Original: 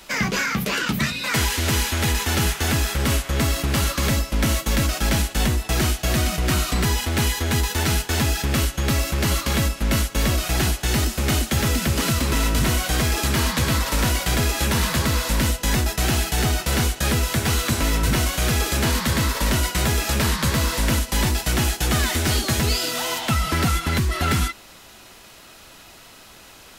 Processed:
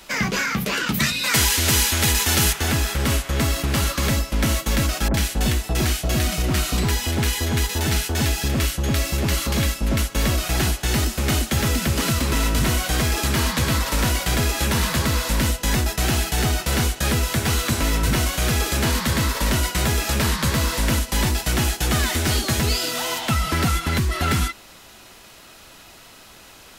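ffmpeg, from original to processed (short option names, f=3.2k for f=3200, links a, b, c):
-filter_complex "[0:a]asettb=1/sr,asplit=3[a][b][c];[a]atrim=end=0.944[d];[b]atrim=start=0.94:end=2.53,asetpts=PTS-STARTPTS,afade=t=in:d=0.004:c=qsin,afade=t=out:st=1.586:d=0.004:c=qsin,highshelf=f=3.2k:g=8[e];[c]atrim=start=2.526[f];[d][e]acrossfade=d=0.004:c1=hsin:c2=qsin[g];[g][f]acrossfade=d=0.004:c1=qsin:c2=hsin,asettb=1/sr,asplit=3[h][i][j];[h]atrim=end=5.084[k];[i]atrim=start=5.08:end=10,asetpts=PTS-STARTPTS,afade=t=in:d=0.004:c=qsin,afade=t=out:st=4.916:d=0.004:c=qsin,acrossover=split=1200[l][m];[m]adelay=60[n];[l][n]amix=inputs=2:normalize=0,atrim=end_sample=216972[o];[j]atrim=start=9.996[p];[k][o]acrossfade=d=0.004:c1=hsin:c2=qsin[q];[q][p]acrossfade=d=0.004:c1=qsin:c2=hsin"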